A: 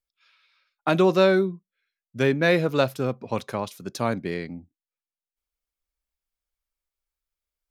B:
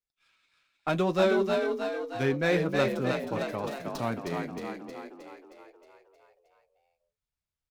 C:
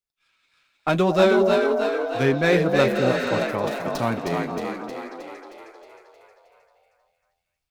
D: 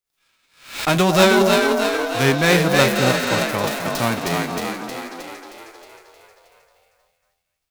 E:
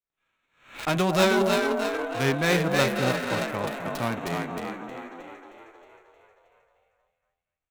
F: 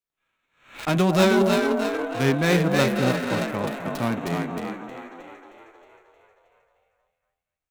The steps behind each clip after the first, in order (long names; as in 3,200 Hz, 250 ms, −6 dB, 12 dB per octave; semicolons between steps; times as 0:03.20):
flanger 1.8 Hz, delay 6.3 ms, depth 2 ms, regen −47%; on a send: echo with shifted repeats 313 ms, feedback 57%, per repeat +43 Hz, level −4 dB; on the sum: windowed peak hold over 3 samples; level −2.5 dB
healed spectral selection 0:02.98–0:03.39, 1,300–8,700 Hz after; automatic gain control gain up to 7 dB; echo through a band-pass that steps 233 ms, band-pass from 590 Hz, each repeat 0.7 octaves, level −5.5 dB
spectral envelope flattened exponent 0.6; background raised ahead of every attack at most 120 dB per second; level +3 dB
adaptive Wiener filter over 9 samples; level −7 dB
dynamic equaliser 220 Hz, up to +6 dB, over −38 dBFS, Q 0.75